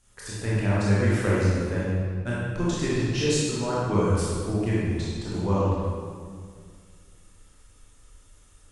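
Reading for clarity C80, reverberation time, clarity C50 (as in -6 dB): -1.0 dB, 2.0 s, -4.0 dB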